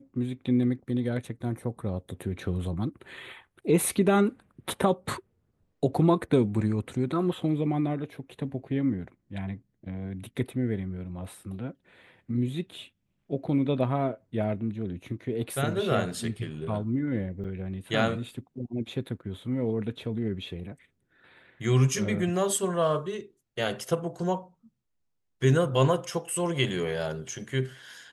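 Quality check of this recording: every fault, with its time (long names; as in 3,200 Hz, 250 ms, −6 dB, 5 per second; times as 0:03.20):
0:17.44–0:17.45: drop-out 6.9 ms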